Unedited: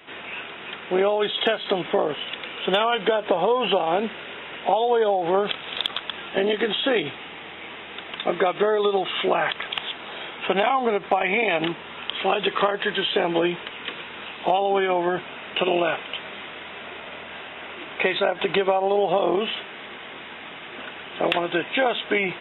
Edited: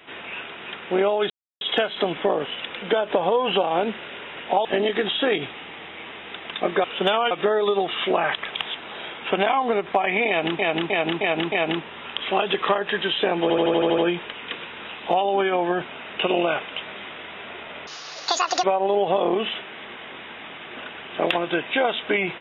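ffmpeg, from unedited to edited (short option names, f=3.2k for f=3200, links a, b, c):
-filter_complex "[0:a]asplit=19[a][b][c][d][e][f][g][h][i][j][k][l][m][n][o][p][q][r][s];[a]atrim=end=1.3,asetpts=PTS-STARTPTS,afade=t=out:st=1.296:d=0.004:c=hsin,apad=pad_dur=0.31[t];[b]atrim=start=1.3:end=2.512,asetpts=PTS-STARTPTS,afade=t=in:d=0.004:c=hsin[u];[c]atrim=start=2.978:end=4.812[v];[d]atrim=start=6.288:end=8.482[w];[e]atrim=start=2.508:end=2.982[x];[f]atrim=start=8.478:end=11.762[y];[g]atrim=start=11.448:end=11.762[z];[h]atrim=start=11.448:end=11.762[aa];[i]atrim=start=11.448:end=11.762[ab];[j]atrim=start=11.448:end=13.432[ac];[k]atrim=start=13.348:end=13.432[ad];[l]atrim=start=13.348:end=13.432[ae];[m]atrim=start=13.348:end=13.432[af];[n]atrim=start=13.348:end=13.432[ag];[o]atrim=start=13.348:end=13.432[ah];[p]atrim=start=13.348:end=13.432[ai];[q]atrim=start=13.348:end=17.244[aj];[r]atrim=start=17.24:end=18.65,asetpts=PTS-STARTPTS,asetrate=81144,aresample=44100,atrim=end_sample=33794,asetpts=PTS-STARTPTS[ak];[s]atrim=start=18.646[al];[t][u]concat=n=2:v=0:a=1[am];[am][v]acrossfade=d=0.004:c1=hsin:c2=hsin[an];[an][w]acrossfade=d=0.004:c1=hsin:c2=hsin[ao];[ao][x]acrossfade=d=0.004:c1=hsin:c2=hsin[ap];[ap][y]acrossfade=d=0.004:c1=hsin:c2=hsin[aq];[aq][z]acrossfade=d=0.004:c1=hsin:c2=hsin[ar];[ar][aa]acrossfade=d=0.004:c1=hsin:c2=hsin[as];[as][ab]acrossfade=d=0.004:c1=hsin:c2=hsin[at];[at][ac]acrossfade=d=0.004:c1=hsin:c2=hsin[au];[au][ad]acrossfade=d=0.004:c1=hsin:c2=hsin[av];[av][ae]acrossfade=d=0.004:c1=hsin:c2=hsin[aw];[aw][af]acrossfade=d=0.004:c1=hsin:c2=hsin[ax];[ax][ag]acrossfade=d=0.004:c1=hsin:c2=hsin[ay];[ay][ah]acrossfade=d=0.004:c1=hsin:c2=hsin[az];[az][ai]acrossfade=d=0.004:c1=hsin:c2=hsin[ba];[ba][aj]acrossfade=d=0.004:c1=hsin:c2=hsin[bb];[bb][ak]acrossfade=d=0.004:c1=hsin:c2=hsin[bc];[bc][al]acrossfade=d=0.004:c1=hsin:c2=hsin"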